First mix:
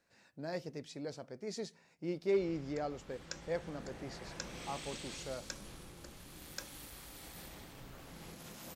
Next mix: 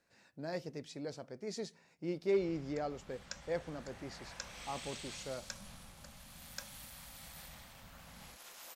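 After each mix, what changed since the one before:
first sound: add Chebyshev band-stop filter 230–590 Hz, order 2
second sound: add high-pass filter 760 Hz 12 dB per octave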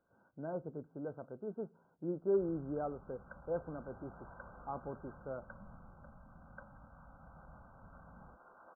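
master: add linear-phase brick-wall low-pass 1,600 Hz

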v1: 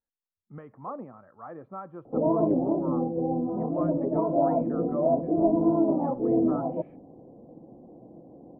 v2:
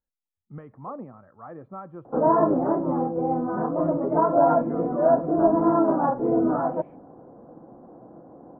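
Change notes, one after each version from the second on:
speech: add low-shelf EQ 150 Hz +8.5 dB
background: remove Bessel low-pass filter 500 Hz, order 8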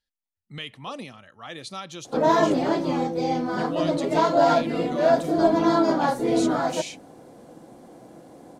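master: remove Butterworth low-pass 1,300 Hz 36 dB per octave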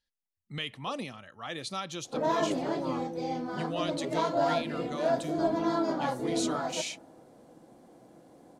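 background −9.5 dB
reverb: on, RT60 2.1 s

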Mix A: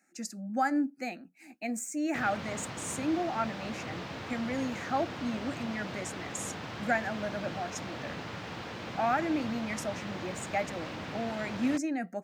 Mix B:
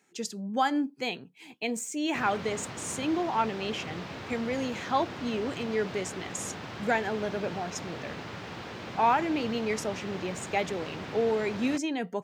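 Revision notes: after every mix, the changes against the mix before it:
speech: remove phaser with its sweep stopped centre 660 Hz, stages 8
master: remove notch filter 390 Hz, Q 12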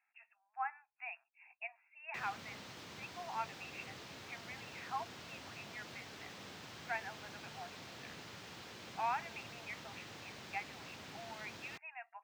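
speech: add linear-phase brick-wall band-pass 640–2,800 Hz
master: add first-order pre-emphasis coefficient 0.8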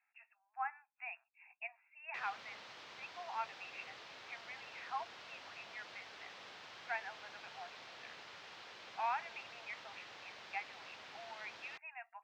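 master: add three-way crossover with the lows and the highs turned down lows −16 dB, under 470 Hz, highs −20 dB, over 5,600 Hz

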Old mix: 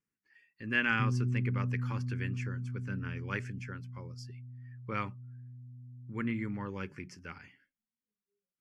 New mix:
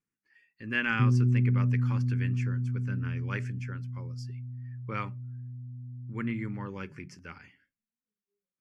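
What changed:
background +7.5 dB
reverb: on, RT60 0.35 s

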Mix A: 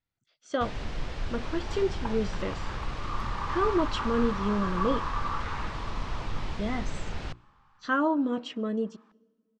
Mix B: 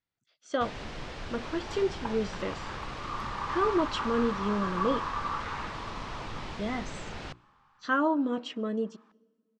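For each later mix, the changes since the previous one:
master: add low-shelf EQ 94 Hz −12 dB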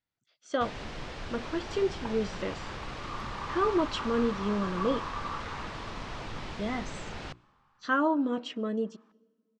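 second sound −4.0 dB

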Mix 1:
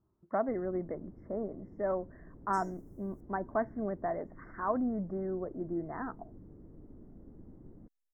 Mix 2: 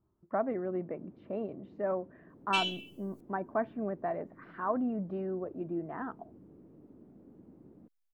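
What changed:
first sound: add high-pass filter 160 Hz 12 dB per octave
second sound +5.5 dB
master: remove linear-phase brick-wall band-stop 2,200–5,100 Hz

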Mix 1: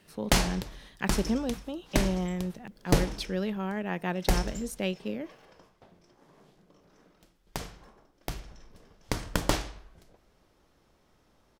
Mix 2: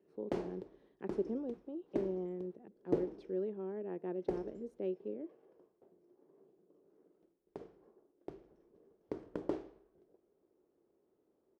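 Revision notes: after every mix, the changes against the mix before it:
master: add resonant band-pass 380 Hz, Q 3.8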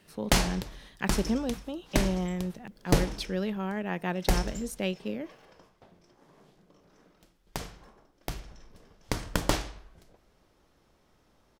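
master: remove resonant band-pass 380 Hz, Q 3.8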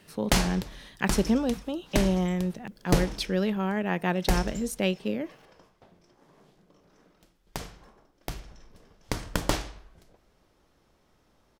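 speech +4.5 dB

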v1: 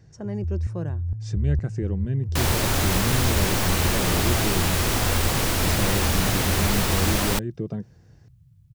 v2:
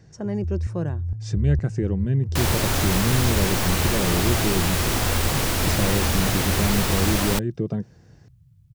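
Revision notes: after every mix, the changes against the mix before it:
speech +4.0 dB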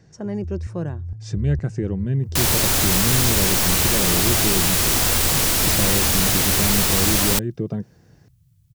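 first sound −3.5 dB
second sound: add high-shelf EQ 3,500 Hz +10 dB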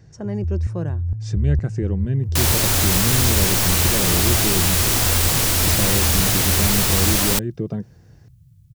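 first sound +7.5 dB

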